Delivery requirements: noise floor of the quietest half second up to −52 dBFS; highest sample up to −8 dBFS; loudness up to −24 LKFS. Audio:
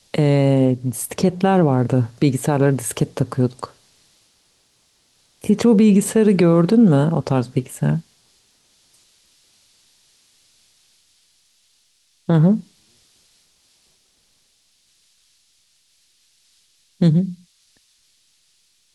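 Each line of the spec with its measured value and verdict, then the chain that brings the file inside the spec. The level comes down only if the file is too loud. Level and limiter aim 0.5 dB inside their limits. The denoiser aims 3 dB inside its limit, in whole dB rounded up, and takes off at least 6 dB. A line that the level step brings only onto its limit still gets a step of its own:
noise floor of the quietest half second −62 dBFS: in spec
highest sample −5.5 dBFS: out of spec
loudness −17.5 LKFS: out of spec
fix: level −7 dB

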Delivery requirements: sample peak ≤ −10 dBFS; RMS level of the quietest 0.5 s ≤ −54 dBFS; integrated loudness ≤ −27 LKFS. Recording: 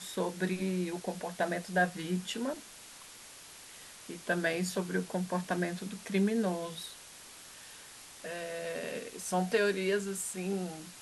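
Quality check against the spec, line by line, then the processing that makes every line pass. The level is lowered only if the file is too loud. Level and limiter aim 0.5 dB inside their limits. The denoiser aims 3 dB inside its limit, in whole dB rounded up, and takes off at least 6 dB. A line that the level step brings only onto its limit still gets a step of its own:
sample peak −17.0 dBFS: in spec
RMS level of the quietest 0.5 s −51 dBFS: out of spec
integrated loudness −34.0 LKFS: in spec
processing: broadband denoise 6 dB, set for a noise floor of −51 dBFS

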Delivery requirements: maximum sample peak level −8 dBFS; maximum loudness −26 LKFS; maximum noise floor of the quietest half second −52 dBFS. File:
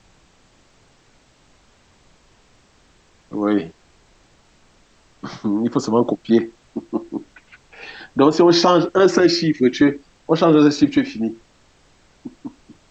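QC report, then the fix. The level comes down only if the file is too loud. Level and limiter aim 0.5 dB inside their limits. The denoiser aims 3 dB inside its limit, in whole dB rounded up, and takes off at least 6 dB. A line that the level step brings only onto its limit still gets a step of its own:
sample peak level −3.5 dBFS: out of spec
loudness −17.5 LKFS: out of spec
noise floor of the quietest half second −55 dBFS: in spec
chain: level −9 dB

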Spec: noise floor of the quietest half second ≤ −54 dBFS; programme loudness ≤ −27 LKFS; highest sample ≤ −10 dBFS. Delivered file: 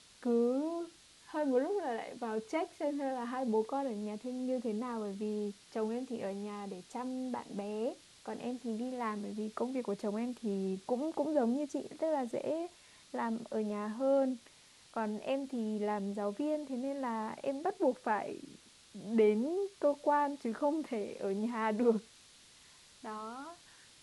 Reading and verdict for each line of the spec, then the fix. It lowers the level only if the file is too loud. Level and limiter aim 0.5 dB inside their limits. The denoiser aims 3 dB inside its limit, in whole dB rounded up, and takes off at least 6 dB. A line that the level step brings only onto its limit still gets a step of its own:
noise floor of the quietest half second −61 dBFS: in spec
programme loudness −36.0 LKFS: in spec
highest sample −18.0 dBFS: in spec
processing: no processing needed

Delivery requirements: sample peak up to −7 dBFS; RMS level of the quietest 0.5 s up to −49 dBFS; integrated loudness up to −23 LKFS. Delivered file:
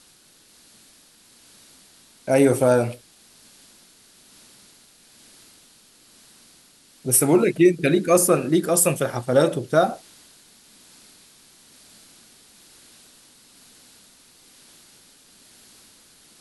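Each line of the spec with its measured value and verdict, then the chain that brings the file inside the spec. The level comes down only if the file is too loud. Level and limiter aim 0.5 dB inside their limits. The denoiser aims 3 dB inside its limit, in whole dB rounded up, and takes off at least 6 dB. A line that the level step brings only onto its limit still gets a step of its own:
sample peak −5.5 dBFS: out of spec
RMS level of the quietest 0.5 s −55 dBFS: in spec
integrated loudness −19.5 LKFS: out of spec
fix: level −4 dB

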